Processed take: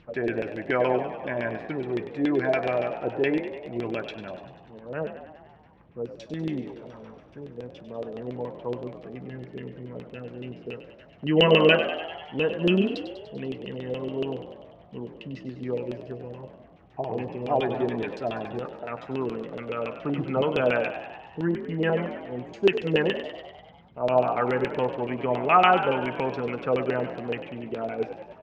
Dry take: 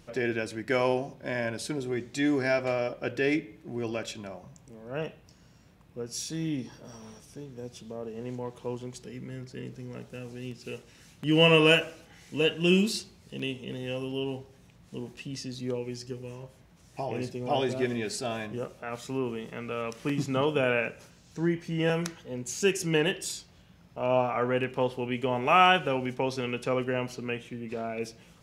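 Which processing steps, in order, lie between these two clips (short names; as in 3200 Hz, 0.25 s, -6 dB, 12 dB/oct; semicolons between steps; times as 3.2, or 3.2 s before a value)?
high shelf 5100 Hz -11 dB; LFO low-pass saw down 7.1 Hz 380–3600 Hz; 23.18–24.04 tape spacing loss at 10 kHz 20 dB; on a send: frequency-shifting echo 98 ms, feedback 65%, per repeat +47 Hz, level -11 dB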